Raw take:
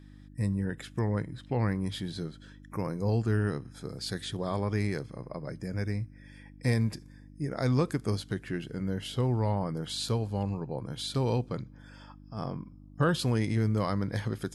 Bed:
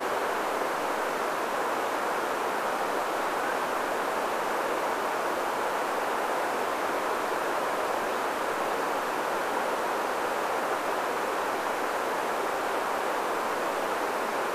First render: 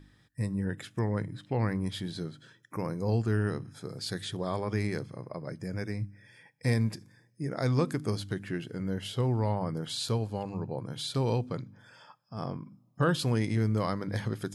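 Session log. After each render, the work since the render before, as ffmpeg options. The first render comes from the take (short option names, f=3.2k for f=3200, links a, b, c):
-af "bandreject=f=50:t=h:w=4,bandreject=f=100:t=h:w=4,bandreject=f=150:t=h:w=4,bandreject=f=200:t=h:w=4,bandreject=f=250:t=h:w=4,bandreject=f=300:t=h:w=4"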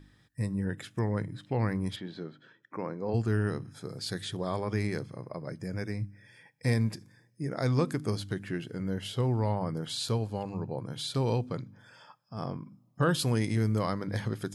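-filter_complex "[0:a]asplit=3[a][b][c];[a]afade=t=out:st=1.95:d=0.02[d];[b]highpass=220,lowpass=2.7k,afade=t=in:st=1.95:d=0.02,afade=t=out:st=3.13:d=0.02[e];[c]afade=t=in:st=3.13:d=0.02[f];[d][e][f]amix=inputs=3:normalize=0,asettb=1/sr,asplit=3[g][h][i];[g]atrim=end=13.104[j];[h]atrim=start=13.1:end=13.79,asetpts=PTS-STARTPTS,afade=t=in:d=0.004:c=qsin,afade=t=out:st=0.686:d=0.004:c=qsin,highshelf=f=7.8k:g=8.5[k];[i]atrim=start=13.786[l];[j][k]acrossfade=d=0.004:c1=hsin:c2=qsin[m];[m][l]acrossfade=d=0.004:c1=qsin:c2=hsin"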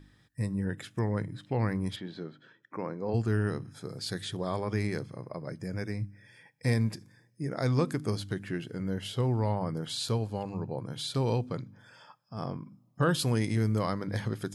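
-af anull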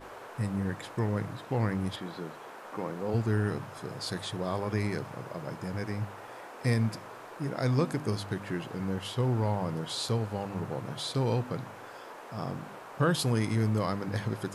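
-filter_complex "[1:a]volume=-17dB[a];[0:a][a]amix=inputs=2:normalize=0"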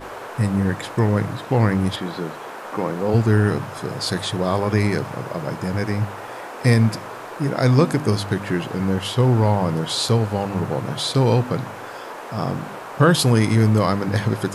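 -af "volume=11.5dB"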